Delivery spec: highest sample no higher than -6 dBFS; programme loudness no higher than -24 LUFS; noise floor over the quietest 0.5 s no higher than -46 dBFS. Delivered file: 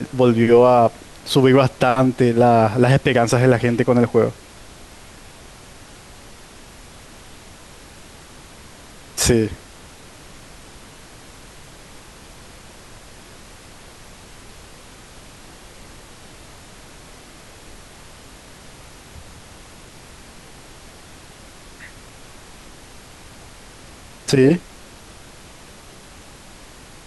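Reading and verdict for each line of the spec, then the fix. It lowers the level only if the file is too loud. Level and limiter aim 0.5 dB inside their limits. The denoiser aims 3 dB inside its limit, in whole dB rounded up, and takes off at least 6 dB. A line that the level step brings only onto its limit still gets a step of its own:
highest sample -3.0 dBFS: fail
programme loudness -16.0 LUFS: fail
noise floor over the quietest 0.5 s -42 dBFS: fail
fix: trim -8.5 dB

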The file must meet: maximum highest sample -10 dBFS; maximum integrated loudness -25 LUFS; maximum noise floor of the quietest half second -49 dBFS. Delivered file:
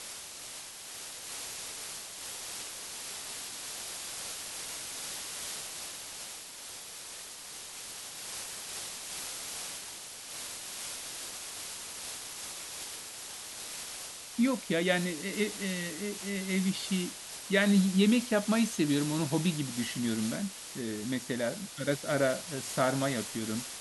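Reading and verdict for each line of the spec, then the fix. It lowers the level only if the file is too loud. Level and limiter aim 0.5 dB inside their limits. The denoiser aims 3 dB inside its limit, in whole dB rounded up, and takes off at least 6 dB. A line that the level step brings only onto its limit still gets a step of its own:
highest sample -13.0 dBFS: pass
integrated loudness -33.5 LUFS: pass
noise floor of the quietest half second -45 dBFS: fail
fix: noise reduction 7 dB, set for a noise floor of -45 dBFS

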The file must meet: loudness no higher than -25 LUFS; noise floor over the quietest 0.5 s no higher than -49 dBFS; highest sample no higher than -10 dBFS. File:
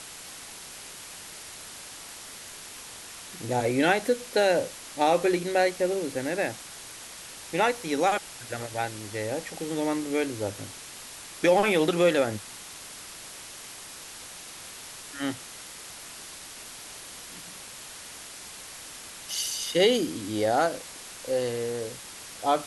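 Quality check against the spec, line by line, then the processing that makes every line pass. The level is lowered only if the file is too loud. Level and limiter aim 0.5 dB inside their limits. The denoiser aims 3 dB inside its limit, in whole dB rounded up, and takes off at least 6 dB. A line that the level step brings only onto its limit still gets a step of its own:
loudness -27.0 LUFS: pass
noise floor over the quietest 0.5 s -43 dBFS: fail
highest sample -8.0 dBFS: fail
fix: noise reduction 9 dB, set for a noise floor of -43 dBFS; peak limiter -10.5 dBFS

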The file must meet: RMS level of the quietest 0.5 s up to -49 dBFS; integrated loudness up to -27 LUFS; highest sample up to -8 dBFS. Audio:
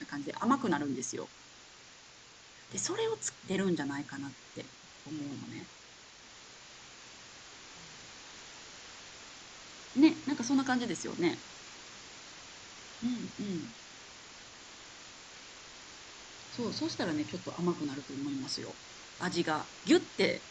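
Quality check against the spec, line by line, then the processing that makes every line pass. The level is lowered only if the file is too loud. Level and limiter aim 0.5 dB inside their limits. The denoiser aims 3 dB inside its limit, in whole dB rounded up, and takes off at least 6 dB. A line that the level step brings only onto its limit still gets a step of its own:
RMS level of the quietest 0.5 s -55 dBFS: pass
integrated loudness -34.0 LUFS: pass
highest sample -13.0 dBFS: pass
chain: none needed

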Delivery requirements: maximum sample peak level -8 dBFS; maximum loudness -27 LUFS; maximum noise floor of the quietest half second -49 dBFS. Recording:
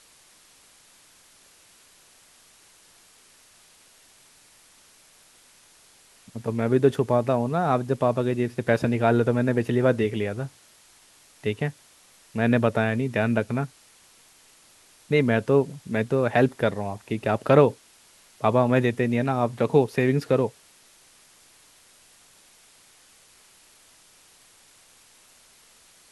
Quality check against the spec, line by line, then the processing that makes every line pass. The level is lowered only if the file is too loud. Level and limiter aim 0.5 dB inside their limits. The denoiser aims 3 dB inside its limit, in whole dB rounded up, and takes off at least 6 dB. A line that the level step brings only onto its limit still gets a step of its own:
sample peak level -4.5 dBFS: fail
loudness -23.5 LUFS: fail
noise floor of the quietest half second -56 dBFS: pass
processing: trim -4 dB

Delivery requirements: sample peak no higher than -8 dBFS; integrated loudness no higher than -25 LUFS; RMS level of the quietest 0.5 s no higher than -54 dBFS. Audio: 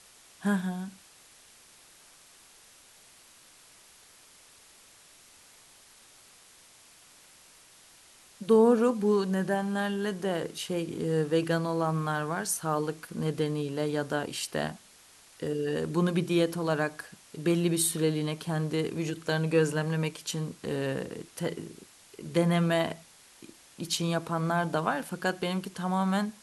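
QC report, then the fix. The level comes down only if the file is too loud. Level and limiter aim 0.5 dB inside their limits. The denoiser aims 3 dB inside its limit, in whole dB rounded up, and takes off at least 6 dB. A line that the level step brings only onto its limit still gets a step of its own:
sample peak -11.0 dBFS: pass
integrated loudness -29.0 LUFS: pass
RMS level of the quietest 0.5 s -56 dBFS: pass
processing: none needed

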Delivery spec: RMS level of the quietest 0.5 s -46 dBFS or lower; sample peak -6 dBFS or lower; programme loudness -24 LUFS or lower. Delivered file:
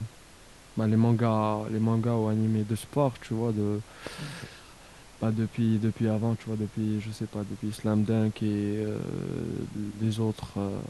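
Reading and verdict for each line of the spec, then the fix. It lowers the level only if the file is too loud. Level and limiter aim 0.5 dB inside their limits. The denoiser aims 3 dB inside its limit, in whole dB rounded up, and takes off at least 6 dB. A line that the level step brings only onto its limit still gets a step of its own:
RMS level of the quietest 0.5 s -51 dBFS: pass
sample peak -11.5 dBFS: pass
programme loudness -29.0 LUFS: pass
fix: none needed

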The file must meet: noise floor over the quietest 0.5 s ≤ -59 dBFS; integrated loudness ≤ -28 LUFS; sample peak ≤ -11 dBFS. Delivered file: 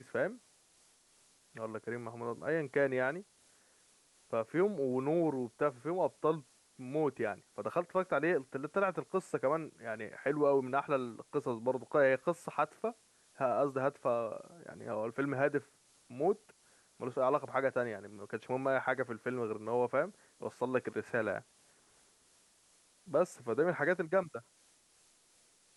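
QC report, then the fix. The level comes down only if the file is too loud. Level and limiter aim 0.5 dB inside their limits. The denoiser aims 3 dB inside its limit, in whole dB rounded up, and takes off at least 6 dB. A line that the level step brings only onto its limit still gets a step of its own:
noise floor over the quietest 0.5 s -68 dBFS: pass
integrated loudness -35.0 LUFS: pass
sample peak -16.5 dBFS: pass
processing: none needed

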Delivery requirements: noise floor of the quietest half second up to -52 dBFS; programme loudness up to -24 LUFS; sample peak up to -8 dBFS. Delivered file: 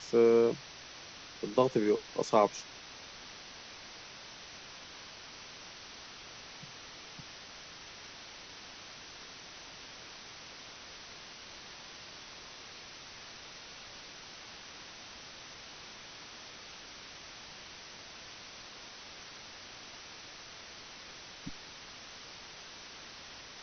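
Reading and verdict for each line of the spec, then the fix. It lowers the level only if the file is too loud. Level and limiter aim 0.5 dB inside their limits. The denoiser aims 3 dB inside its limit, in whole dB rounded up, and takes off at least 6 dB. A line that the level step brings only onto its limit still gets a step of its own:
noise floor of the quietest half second -50 dBFS: fail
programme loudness -39.0 LUFS: pass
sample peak -11.5 dBFS: pass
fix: noise reduction 6 dB, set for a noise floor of -50 dBFS

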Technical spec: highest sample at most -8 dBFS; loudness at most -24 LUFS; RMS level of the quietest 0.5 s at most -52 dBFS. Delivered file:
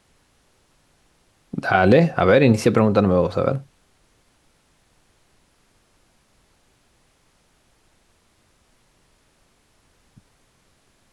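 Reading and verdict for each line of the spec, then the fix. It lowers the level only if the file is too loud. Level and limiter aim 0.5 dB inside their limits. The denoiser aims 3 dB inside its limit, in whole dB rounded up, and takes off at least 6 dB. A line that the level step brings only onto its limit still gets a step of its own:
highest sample -3.5 dBFS: fail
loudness -18.0 LUFS: fail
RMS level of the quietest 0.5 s -62 dBFS: pass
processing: trim -6.5 dB

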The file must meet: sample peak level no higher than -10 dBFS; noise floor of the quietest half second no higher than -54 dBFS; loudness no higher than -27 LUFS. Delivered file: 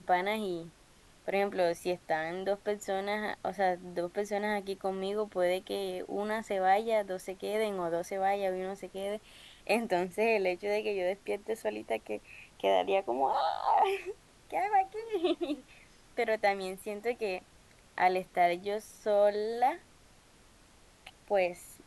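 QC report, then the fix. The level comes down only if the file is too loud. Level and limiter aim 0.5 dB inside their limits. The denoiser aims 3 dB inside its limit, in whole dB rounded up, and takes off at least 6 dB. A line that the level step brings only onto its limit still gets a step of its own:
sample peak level -14.5 dBFS: pass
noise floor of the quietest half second -60 dBFS: pass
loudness -32.0 LUFS: pass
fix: none needed

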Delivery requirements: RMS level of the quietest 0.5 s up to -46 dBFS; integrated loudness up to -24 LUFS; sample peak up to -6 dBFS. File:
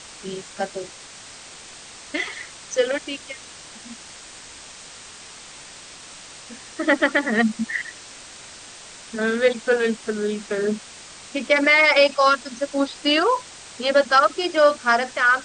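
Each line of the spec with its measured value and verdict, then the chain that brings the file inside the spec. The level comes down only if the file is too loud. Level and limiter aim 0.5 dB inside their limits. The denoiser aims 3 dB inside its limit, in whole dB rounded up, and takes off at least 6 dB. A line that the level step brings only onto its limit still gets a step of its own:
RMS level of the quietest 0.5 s -42 dBFS: fail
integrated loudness -20.5 LUFS: fail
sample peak -5.5 dBFS: fail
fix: noise reduction 6 dB, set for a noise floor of -42 dBFS; trim -4 dB

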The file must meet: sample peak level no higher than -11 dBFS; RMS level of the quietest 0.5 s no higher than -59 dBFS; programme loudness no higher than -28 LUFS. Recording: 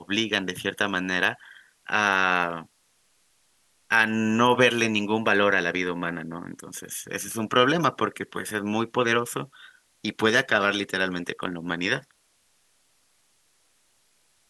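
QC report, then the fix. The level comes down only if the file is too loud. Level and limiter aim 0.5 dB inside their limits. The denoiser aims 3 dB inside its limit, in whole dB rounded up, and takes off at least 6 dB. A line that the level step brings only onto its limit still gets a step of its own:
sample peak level -4.5 dBFS: fail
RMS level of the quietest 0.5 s -66 dBFS: pass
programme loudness -24.0 LUFS: fail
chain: trim -4.5 dB; peak limiter -11.5 dBFS

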